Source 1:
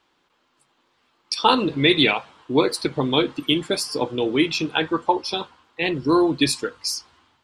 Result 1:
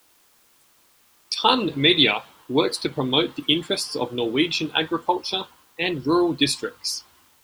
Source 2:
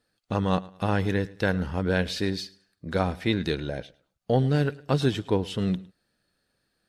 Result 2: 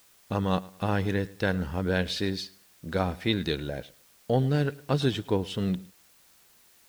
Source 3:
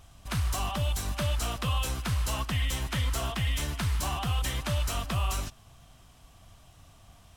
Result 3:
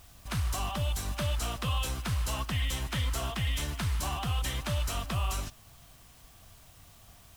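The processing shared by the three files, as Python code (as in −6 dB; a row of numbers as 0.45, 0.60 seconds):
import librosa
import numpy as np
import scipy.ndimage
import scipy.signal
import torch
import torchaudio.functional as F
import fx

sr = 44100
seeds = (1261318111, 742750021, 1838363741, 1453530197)

p1 = fx.dynamic_eq(x, sr, hz=3500.0, q=2.5, threshold_db=-39.0, ratio=4.0, max_db=5)
p2 = fx.quant_dither(p1, sr, seeds[0], bits=8, dither='triangular')
p3 = p1 + F.gain(torch.from_numpy(p2), -6.0).numpy()
y = F.gain(torch.from_numpy(p3), -5.5).numpy()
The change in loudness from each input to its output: −0.5, −2.0, −2.0 LU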